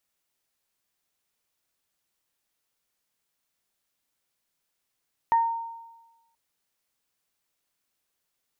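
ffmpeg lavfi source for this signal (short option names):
-f lavfi -i "aevalsrc='0.158*pow(10,-3*t/1.13)*sin(2*PI*920*t)+0.0224*pow(10,-3*t/0.31)*sin(2*PI*1840*t)':d=1.03:s=44100"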